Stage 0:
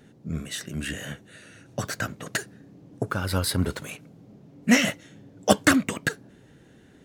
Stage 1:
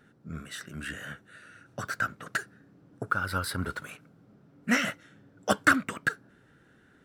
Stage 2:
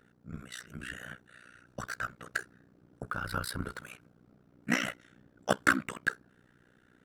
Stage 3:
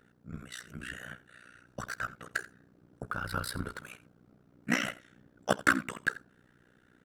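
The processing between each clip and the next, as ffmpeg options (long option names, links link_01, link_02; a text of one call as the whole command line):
ffmpeg -i in.wav -af "equalizer=frequency=1400:width=2.3:gain=13.5,bandreject=frequency=6600:width=14,volume=-8.5dB" out.wav
ffmpeg -i in.wav -af "tremolo=f=61:d=0.974" out.wav
ffmpeg -i in.wav -af "aecho=1:1:85:0.119" out.wav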